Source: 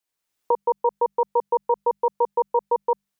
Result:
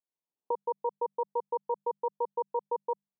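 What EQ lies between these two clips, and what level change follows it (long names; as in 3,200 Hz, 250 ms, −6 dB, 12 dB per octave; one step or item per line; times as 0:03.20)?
elliptic band-pass filter 140–1,000 Hz, stop band 40 dB
high-frequency loss of the air 430 metres
−8.5 dB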